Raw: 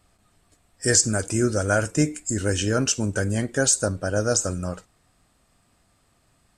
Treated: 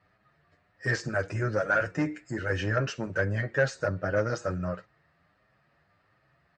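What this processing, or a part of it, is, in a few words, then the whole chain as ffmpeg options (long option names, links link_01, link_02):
barber-pole flanger into a guitar amplifier: -filter_complex "[0:a]asplit=2[link_01][link_02];[link_02]adelay=7.8,afreqshift=1.5[link_03];[link_01][link_03]amix=inputs=2:normalize=1,asoftclip=type=tanh:threshold=-18.5dB,highpass=83,equalizer=frequency=150:width_type=q:width=4:gain=5,equalizer=frequency=240:width_type=q:width=4:gain=-8,equalizer=frequency=570:width_type=q:width=4:gain=5,equalizer=frequency=1300:width_type=q:width=4:gain=4,equalizer=frequency=1800:width_type=q:width=4:gain=10,equalizer=frequency=3400:width_type=q:width=4:gain=-7,lowpass=frequency=4100:width=0.5412,lowpass=frequency=4100:width=1.3066,volume=-1dB"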